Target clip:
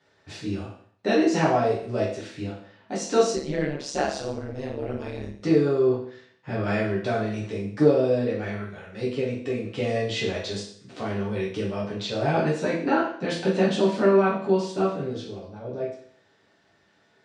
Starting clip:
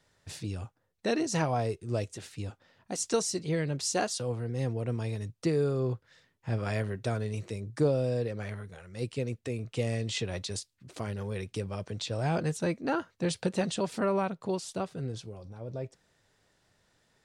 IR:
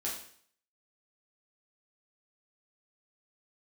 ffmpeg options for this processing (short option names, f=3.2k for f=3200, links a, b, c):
-filter_complex "[0:a]highpass=140,lowpass=4k[a];[1:a]atrim=start_sample=2205[b];[a][b]afir=irnorm=-1:irlink=0,asplit=3[c][d][e];[c]afade=t=out:st=3.35:d=0.02[f];[d]tremolo=f=140:d=0.857,afade=t=in:st=3.35:d=0.02,afade=t=out:st=5.41:d=0.02[g];[e]afade=t=in:st=5.41:d=0.02[h];[f][g][h]amix=inputs=3:normalize=0,volume=5.5dB"